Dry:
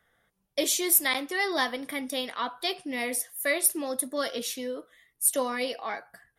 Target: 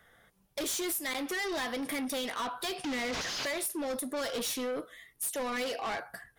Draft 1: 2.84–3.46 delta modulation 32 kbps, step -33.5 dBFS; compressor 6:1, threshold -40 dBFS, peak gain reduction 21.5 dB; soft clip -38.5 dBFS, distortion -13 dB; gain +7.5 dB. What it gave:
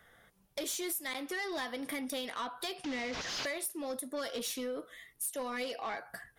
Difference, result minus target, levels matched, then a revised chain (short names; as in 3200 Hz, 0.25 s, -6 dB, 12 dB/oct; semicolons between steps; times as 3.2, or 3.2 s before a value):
compressor: peak gain reduction +8.5 dB
2.84–3.46 delta modulation 32 kbps, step -33.5 dBFS; compressor 6:1, threshold -30 dBFS, peak gain reduction 13.5 dB; soft clip -38.5 dBFS, distortion -7 dB; gain +7.5 dB